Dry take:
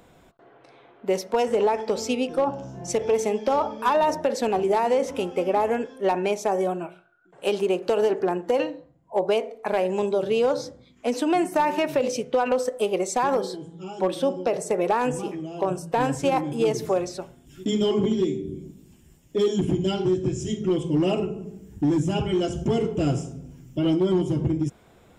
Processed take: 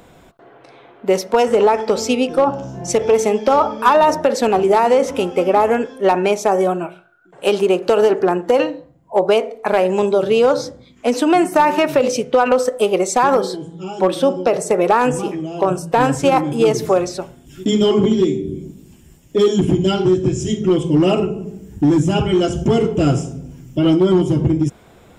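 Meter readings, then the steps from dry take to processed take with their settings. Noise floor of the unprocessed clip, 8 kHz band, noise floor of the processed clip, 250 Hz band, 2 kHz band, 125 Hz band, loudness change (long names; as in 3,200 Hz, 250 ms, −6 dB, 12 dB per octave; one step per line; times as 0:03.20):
−55 dBFS, +8.0 dB, −47 dBFS, +8.0 dB, +9.0 dB, +8.0 dB, +8.0 dB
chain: dynamic equaliser 1,300 Hz, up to +6 dB, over −46 dBFS, Q 4.7
level +8 dB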